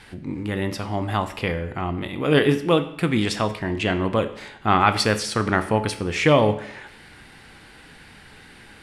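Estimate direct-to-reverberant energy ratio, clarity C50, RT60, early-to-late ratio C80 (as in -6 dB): 9.0 dB, 12.5 dB, 0.70 s, 15.5 dB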